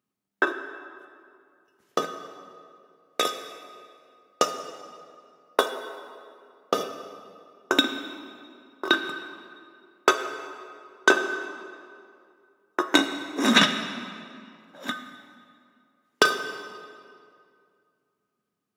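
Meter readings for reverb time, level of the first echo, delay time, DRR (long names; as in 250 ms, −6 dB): 2.3 s, no echo audible, no echo audible, 8.0 dB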